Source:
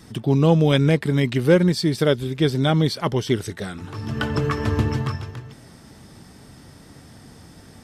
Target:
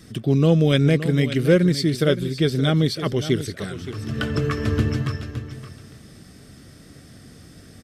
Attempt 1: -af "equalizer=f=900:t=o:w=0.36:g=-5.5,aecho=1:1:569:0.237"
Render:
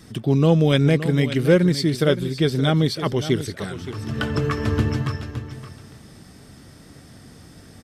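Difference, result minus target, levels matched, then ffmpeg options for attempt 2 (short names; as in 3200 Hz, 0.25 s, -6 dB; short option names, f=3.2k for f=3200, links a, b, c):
1000 Hz band +3.0 dB
-af "equalizer=f=900:t=o:w=0.36:g=-15.5,aecho=1:1:569:0.237"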